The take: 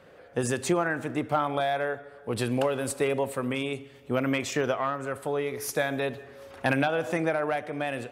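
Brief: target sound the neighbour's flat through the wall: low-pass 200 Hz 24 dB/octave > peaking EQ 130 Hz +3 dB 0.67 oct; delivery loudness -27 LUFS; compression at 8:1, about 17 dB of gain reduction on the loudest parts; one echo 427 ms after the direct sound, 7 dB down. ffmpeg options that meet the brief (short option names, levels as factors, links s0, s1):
-af "acompressor=threshold=0.0112:ratio=8,lowpass=f=200:w=0.5412,lowpass=f=200:w=1.3066,equalizer=f=130:t=o:w=0.67:g=3,aecho=1:1:427:0.447,volume=15.8"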